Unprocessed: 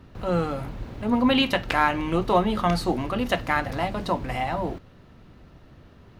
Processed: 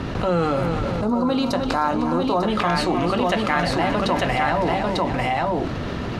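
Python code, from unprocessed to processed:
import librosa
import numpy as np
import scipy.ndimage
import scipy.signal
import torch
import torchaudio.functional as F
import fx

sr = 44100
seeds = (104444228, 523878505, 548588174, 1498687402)

y = scipy.signal.sosfilt(scipy.signal.butter(2, 8200.0, 'lowpass', fs=sr, output='sos'), x)
y = fx.low_shelf(y, sr, hz=94.0, db=-9.0)
y = fx.echo_multitap(y, sr, ms=(309, 606, 896), db=(-12.5, -18.5, -5.5))
y = fx.rider(y, sr, range_db=4, speed_s=0.5)
y = fx.band_shelf(y, sr, hz=2400.0, db=-12.5, octaves=1.2, at=(1.01, 2.48))
y = fx.env_flatten(y, sr, amount_pct=70)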